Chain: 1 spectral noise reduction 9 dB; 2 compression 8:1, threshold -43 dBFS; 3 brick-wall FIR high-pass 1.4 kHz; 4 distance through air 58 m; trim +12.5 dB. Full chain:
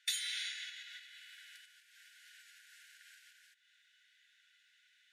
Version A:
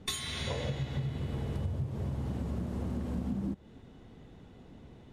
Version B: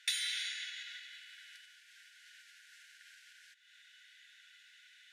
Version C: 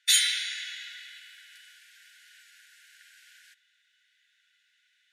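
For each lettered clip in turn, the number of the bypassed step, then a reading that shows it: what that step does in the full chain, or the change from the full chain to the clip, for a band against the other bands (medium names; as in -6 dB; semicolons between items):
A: 3, crest factor change -13.0 dB; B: 1, loudness change +2.0 LU; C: 2, mean gain reduction 6.0 dB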